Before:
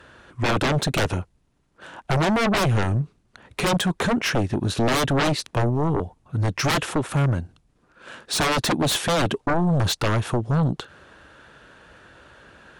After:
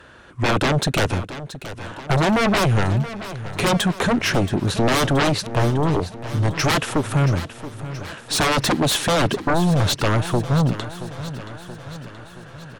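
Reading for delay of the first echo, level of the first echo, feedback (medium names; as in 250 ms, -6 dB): 676 ms, -13.5 dB, 59%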